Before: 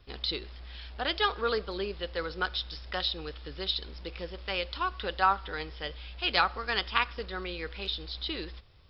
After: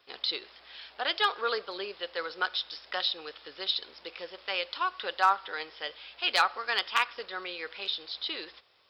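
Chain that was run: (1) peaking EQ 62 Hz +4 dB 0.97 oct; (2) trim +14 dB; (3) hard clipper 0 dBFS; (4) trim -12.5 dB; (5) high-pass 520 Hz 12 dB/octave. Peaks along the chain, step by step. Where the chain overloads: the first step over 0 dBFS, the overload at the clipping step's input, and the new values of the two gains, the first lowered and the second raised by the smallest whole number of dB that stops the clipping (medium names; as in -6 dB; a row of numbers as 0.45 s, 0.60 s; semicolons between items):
-6.5 dBFS, +7.5 dBFS, 0.0 dBFS, -12.5 dBFS, -10.0 dBFS; step 2, 7.5 dB; step 2 +6 dB, step 4 -4.5 dB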